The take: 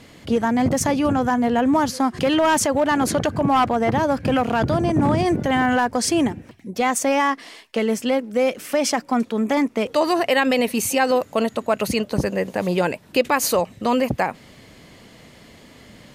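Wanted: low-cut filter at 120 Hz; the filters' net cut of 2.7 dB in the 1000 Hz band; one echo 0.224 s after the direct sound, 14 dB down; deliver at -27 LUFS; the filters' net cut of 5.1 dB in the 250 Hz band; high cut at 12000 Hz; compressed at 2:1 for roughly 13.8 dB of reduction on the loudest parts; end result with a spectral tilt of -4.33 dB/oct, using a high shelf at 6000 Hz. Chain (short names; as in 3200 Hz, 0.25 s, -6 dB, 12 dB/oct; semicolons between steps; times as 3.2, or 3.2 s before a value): HPF 120 Hz; LPF 12000 Hz; bell 250 Hz -5.5 dB; bell 1000 Hz -3 dB; high shelf 6000 Hz -8 dB; compressor 2:1, threshold -42 dBFS; echo 0.224 s -14 dB; gain +8.5 dB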